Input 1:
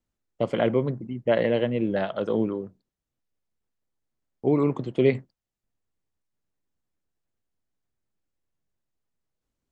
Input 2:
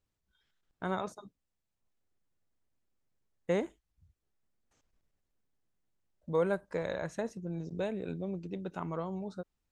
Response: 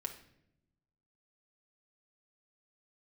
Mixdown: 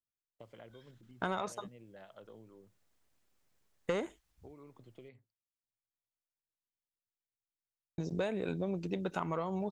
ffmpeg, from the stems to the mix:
-filter_complex "[0:a]equalizer=frequency=110:width=5:gain=11.5,acompressor=threshold=-27dB:ratio=10,volume=-18.5dB[link_01];[1:a]aeval=exprs='0.168*sin(PI/2*1.78*val(0)/0.168)':channel_layout=same,adelay=400,volume=1.5dB,asplit=3[link_02][link_03][link_04];[link_02]atrim=end=5.09,asetpts=PTS-STARTPTS,afade=type=out:start_time=5.086:duration=0.004:curve=hsin[link_05];[link_03]atrim=start=5.09:end=7.98,asetpts=PTS-STARTPTS,volume=0[link_06];[link_04]atrim=start=7.98,asetpts=PTS-STARTPTS,afade=type=in:duration=0.004:curve=hsin[link_07];[link_05][link_06][link_07]concat=n=3:v=0:a=1[link_08];[link_01][link_08]amix=inputs=2:normalize=0,lowshelf=frequency=480:gain=-7.5,acompressor=threshold=-31dB:ratio=6"

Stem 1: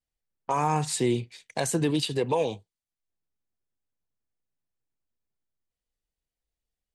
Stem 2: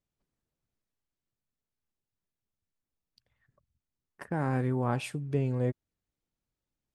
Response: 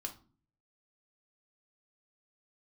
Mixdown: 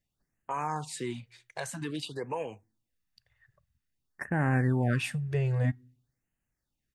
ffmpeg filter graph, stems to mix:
-filter_complex "[0:a]volume=-11.5dB,asplit=2[link_01][link_02];[link_02]volume=-17.5dB[link_03];[1:a]equalizer=frequency=1000:width_type=o:width=0.67:gain=-10,aecho=1:1:1.1:0.36,volume=1.5dB,asplit=2[link_04][link_05];[link_05]volume=-17.5dB[link_06];[2:a]atrim=start_sample=2205[link_07];[link_03][link_06]amix=inputs=2:normalize=0[link_08];[link_08][link_07]afir=irnorm=-1:irlink=0[link_09];[link_01][link_04][link_09]amix=inputs=3:normalize=0,equalizer=frequency=1500:width_type=o:width=1.3:gain=8,afftfilt=real='re*(1-between(b*sr/1024,220*pow(4600/220,0.5+0.5*sin(2*PI*0.51*pts/sr))/1.41,220*pow(4600/220,0.5+0.5*sin(2*PI*0.51*pts/sr))*1.41))':imag='im*(1-between(b*sr/1024,220*pow(4600/220,0.5+0.5*sin(2*PI*0.51*pts/sr))/1.41,220*pow(4600/220,0.5+0.5*sin(2*PI*0.51*pts/sr))*1.41))':win_size=1024:overlap=0.75"

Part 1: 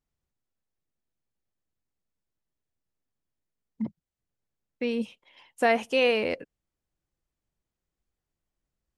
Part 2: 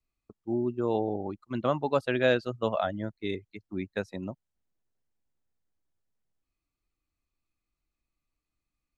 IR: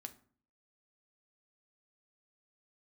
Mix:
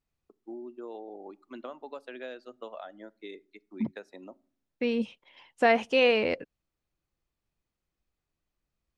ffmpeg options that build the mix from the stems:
-filter_complex "[0:a]lowpass=5600,volume=0.5dB[link_01];[1:a]highpass=frequency=280:width=0.5412,highpass=frequency=280:width=1.3066,acompressor=threshold=-34dB:ratio=4,volume=-7.5dB,asplit=2[link_02][link_03];[link_03]volume=-4.5dB[link_04];[2:a]atrim=start_sample=2205[link_05];[link_04][link_05]afir=irnorm=-1:irlink=0[link_06];[link_01][link_02][link_06]amix=inputs=3:normalize=0"

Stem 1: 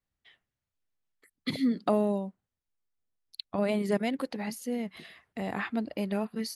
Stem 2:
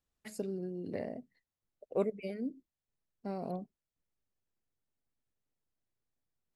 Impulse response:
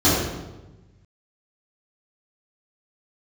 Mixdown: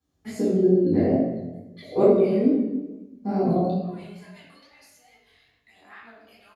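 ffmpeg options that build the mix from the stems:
-filter_complex "[0:a]highpass=1500,aphaser=in_gain=1:out_gain=1:delay=3.5:decay=0.74:speed=0.35:type=sinusoidal,adelay=300,volume=-17dB,asplit=2[link_01][link_02];[link_02]volume=-12dB[link_03];[1:a]volume=-1.5dB,asplit=2[link_04][link_05];[link_05]volume=-5dB[link_06];[2:a]atrim=start_sample=2205[link_07];[link_03][link_06]amix=inputs=2:normalize=0[link_08];[link_08][link_07]afir=irnorm=-1:irlink=0[link_09];[link_01][link_04][link_09]amix=inputs=3:normalize=0,flanger=delay=16.5:depth=7.9:speed=2.3"

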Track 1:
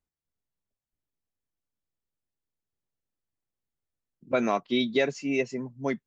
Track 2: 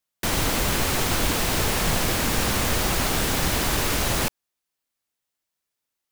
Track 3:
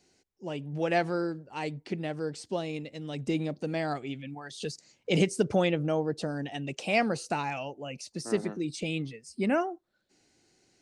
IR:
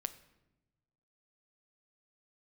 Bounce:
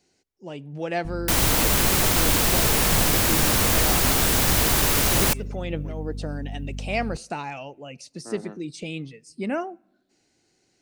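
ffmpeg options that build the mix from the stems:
-filter_complex "[0:a]asoftclip=type=tanh:threshold=-22.5dB,volume=-15dB,asplit=3[link_01][link_02][link_03];[link_02]volume=-21.5dB[link_04];[1:a]highshelf=frequency=7900:gain=7,aeval=exprs='val(0)+0.0251*(sin(2*PI*50*n/s)+sin(2*PI*2*50*n/s)/2+sin(2*PI*3*50*n/s)/3+sin(2*PI*4*50*n/s)/4+sin(2*PI*5*50*n/s)/5)':channel_layout=same,adelay=1050,volume=0.5dB,asplit=2[link_05][link_06];[link_06]volume=-22.5dB[link_07];[2:a]volume=-2dB,asplit=2[link_08][link_09];[link_09]volume=-13.5dB[link_10];[link_03]apad=whole_len=476979[link_11];[link_08][link_11]sidechaincompress=threshold=-57dB:ratio=8:attack=16:release=126[link_12];[3:a]atrim=start_sample=2205[link_13];[link_07][link_10]amix=inputs=2:normalize=0[link_14];[link_14][link_13]afir=irnorm=-1:irlink=0[link_15];[link_04]aecho=0:1:468|936|1404|1872|2340|2808|3276|3744|4212:1|0.58|0.336|0.195|0.113|0.0656|0.0381|0.0221|0.0128[link_16];[link_01][link_05][link_12][link_15][link_16]amix=inputs=5:normalize=0"

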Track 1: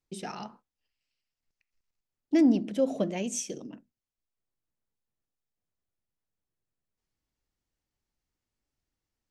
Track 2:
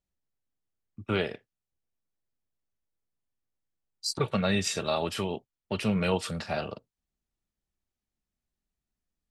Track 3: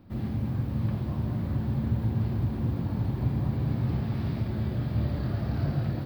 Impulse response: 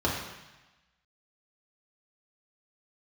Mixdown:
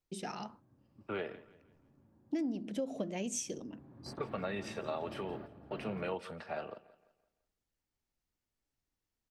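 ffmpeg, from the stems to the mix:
-filter_complex "[0:a]volume=-3dB[link_01];[1:a]acrossover=split=260 2400:gain=0.251 1 0.2[link_02][link_03][link_04];[link_02][link_03][link_04]amix=inputs=3:normalize=0,bandreject=frequency=7100:width=6.7,acontrast=79,volume=-13.5dB,asplit=3[link_05][link_06][link_07];[link_06]volume=-19dB[link_08];[2:a]acrossover=split=220 2600:gain=0.126 1 0.141[link_09][link_10][link_11];[link_09][link_10][link_11]amix=inputs=3:normalize=0,adelay=100,volume=-10.5dB,afade=type=in:start_time=3.36:duration=0.68:silence=0.251189,asplit=2[link_12][link_13];[link_13]volume=-23.5dB[link_14];[link_07]apad=whole_len=271525[link_15];[link_12][link_15]sidechaingate=range=-33dB:threshold=-53dB:ratio=16:detection=peak[link_16];[3:a]atrim=start_sample=2205[link_17];[link_14][link_17]afir=irnorm=-1:irlink=0[link_18];[link_08]aecho=0:1:169|338|507|676|845:1|0.38|0.144|0.0549|0.0209[link_19];[link_01][link_05][link_16][link_18][link_19]amix=inputs=5:normalize=0,acompressor=threshold=-32dB:ratio=10"

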